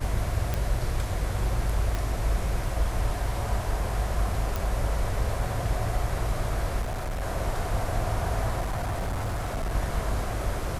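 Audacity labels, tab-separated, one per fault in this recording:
0.540000	0.540000	pop -13 dBFS
1.950000	1.950000	pop
4.560000	4.560000	pop
6.810000	7.230000	clipped -27.5 dBFS
8.600000	9.750000	clipped -25.5 dBFS

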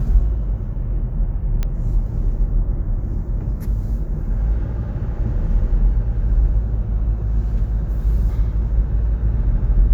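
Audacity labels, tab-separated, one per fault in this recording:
1.630000	1.630000	pop -11 dBFS

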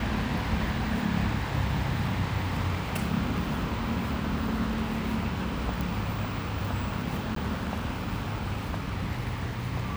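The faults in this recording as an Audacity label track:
5.810000	5.810000	pop
7.350000	7.360000	gap 13 ms

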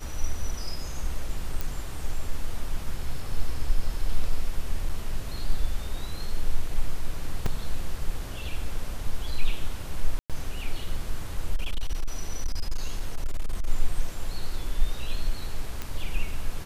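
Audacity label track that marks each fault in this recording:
1.610000	1.610000	pop
4.890000	4.890000	gap 4.7 ms
7.460000	7.460000	gap 3.5 ms
10.190000	10.300000	gap 0.107 s
11.550000	13.670000	clipped -20.5 dBFS
15.820000	15.820000	pop -17 dBFS

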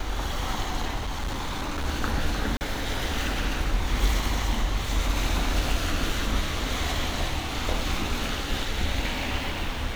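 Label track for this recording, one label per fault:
0.970000	1.860000	clipped -25.5 dBFS
2.570000	2.610000	gap 39 ms

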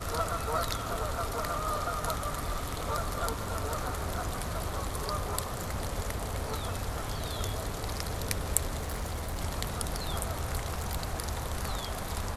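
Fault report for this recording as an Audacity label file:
8.780000	9.410000	clipped -29.5 dBFS
10.590000	11.160000	clipped -26 dBFS

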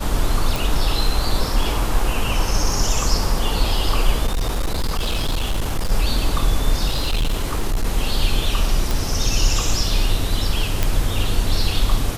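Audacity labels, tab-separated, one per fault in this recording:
0.560000	0.560000	pop
4.260000	5.920000	clipped -16.5 dBFS
6.880000	7.870000	clipped -15.5 dBFS
8.910000	8.910000	pop
10.830000	10.830000	pop -4 dBFS

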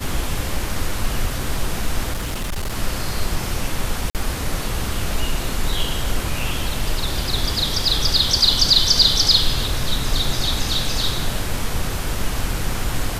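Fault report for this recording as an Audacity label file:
2.130000	2.750000	clipped -20.5 dBFS
4.100000	4.150000	gap 48 ms

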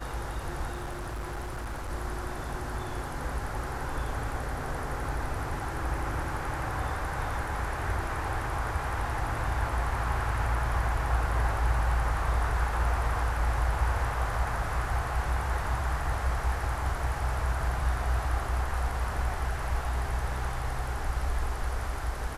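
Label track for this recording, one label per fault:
0.720000	1.910000	clipped -31.5 dBFS

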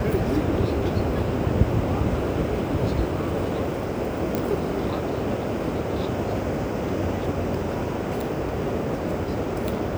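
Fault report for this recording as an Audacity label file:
4.350000	4.350000	pop -11 dBFS

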